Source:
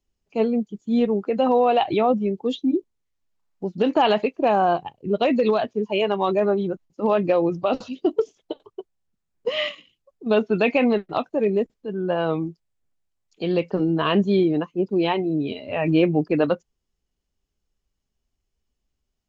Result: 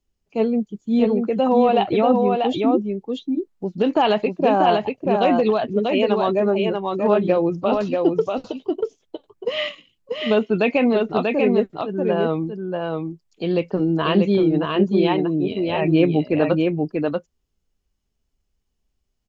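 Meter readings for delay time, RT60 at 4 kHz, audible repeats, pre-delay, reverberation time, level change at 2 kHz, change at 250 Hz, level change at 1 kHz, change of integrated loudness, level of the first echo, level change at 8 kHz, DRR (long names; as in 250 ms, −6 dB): 638 ms, no reverb audible, 1, no reverb audible, no reverb audible, +1.5 dB, +3.0 dB, +2.0 dB, +2.0 dB, −3.5 dB, can't be measured, no reverb audible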